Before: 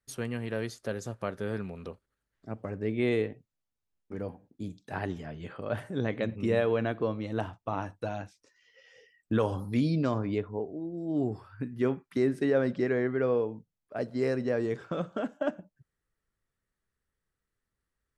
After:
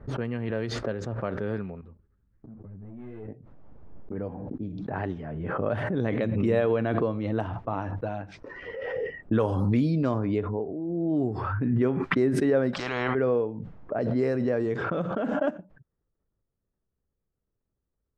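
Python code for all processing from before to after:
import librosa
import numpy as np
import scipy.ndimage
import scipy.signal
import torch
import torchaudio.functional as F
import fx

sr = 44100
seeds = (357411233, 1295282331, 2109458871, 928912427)

y = fx.chain(x, sr, fx.tone_stack(knobs='6-0-2'),
    fx.leveller(passes=3),
    fx.ensemble(), at=(1.81, 3.28))
y = fx.chain(y, sr, fx.low_shelf(hz=250.0, db=-11.5),
    fx.spectral_comp(ratio=4.0), at=(12.73, 13.15))
y = fx.env_lowpass(y, sr, base_hz=740.0, full_db=-24.5)
y = fx.high_shelf(y, sr, hz=2600.0, db=-9.0)
y = fx.pre_swell(y, sr, db_per_s=23.0)
y = y * librosa.db_to_amplitude(2.5)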